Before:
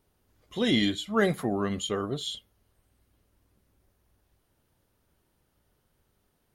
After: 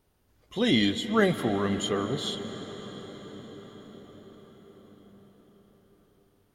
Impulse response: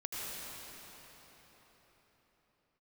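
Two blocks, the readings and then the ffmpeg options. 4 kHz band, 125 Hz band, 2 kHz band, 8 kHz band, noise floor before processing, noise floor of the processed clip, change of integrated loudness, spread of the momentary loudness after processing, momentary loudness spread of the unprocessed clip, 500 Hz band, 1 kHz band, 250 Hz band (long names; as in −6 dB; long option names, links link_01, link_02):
+1.5 dB, +2.0 dB, +1.5 dB, +0.5 dB, −73 dBFS, −67 dBFS, +0.5 dB, 20 LU, 11 LU, +2.0 dB, +1.5 dB, +2.0 dB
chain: -filter_complex "[0:a]asplit=2[link_01][link_02];[1:a]atrim=start_sample=2205,asetrate=24255,aresample=44100,lowpass=8900[link_03];[link_02][link_03]afir=irnorm=-1:irlink=0,volume=-15dB[link_04];[link_01][link_04]amix=inputs=2:normalize=0"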